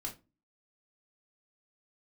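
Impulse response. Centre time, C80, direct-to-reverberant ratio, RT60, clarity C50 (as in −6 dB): 14 ms, 20.0 dB, −2.0 dB, 0.25 s, 13.0 dB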